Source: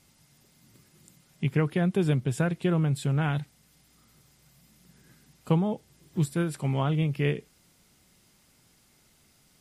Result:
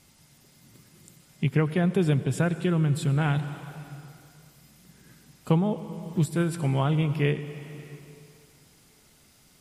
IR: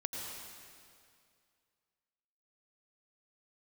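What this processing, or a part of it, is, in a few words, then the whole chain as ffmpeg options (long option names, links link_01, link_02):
ducked reverb: -filter_complex "[0:a]asplit=3[link_01][link_02][link_03];[1:a]atrim=start_sample=2205[link_04];[link_02][link_04]afir=irnorm=-1:irlink=0[link_05];[link_03]apad=whole_len=423537[link_06];[link_05][link_06]sidechaincompress=threshold=-28dB:ratio=8:attack=22:release=836,volume=-4dB[link_07];[link_01][link_07]amix=inputs=2:normalize=0,asettb=1/sr,asplit=3[link_08][link_09][link_10];[link_08]atrim=end=2.604[link_11];[link_09]atrim=start=2.6:end=3.17,asetpts=PTS-STARTPTS,afade=type=in:duration=0.004:curve=qsin,afade=type=out:start_time=0.566:duration=0.004:curve=qsin,equalizer=frequency=680:width_type=o:width=1.3:gain=-5[link_12];[link_10]atrim=start=3.166[link_13];[link_11][link_12]acrossfade=duration=0.004:curve1=hsin:curve2=qsin[link_14];[link_14][link_13]acrossfade=duration=0.004:curve1=qsin:curve2=hsin"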